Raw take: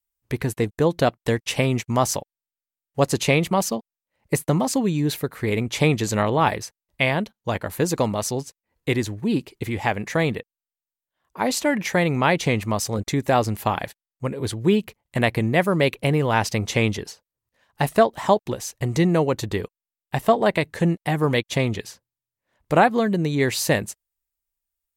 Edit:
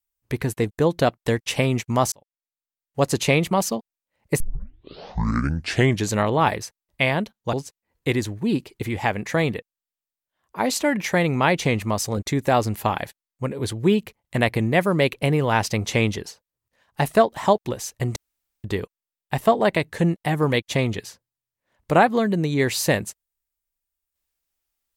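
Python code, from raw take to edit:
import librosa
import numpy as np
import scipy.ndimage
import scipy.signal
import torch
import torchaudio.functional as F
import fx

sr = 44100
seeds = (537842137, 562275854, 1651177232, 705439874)

y = fx.edit(x, sr, fx.fade_in_span(start_s=2.12, length_s=1.0),
    fx.tape_start(start_s=4.4, length_s=1.71),
    fx.cut(start_s=7.53, length_s=0.81),
    fx.room_tone_fill(start_s=18.97, length_s=0.48), tone=tone)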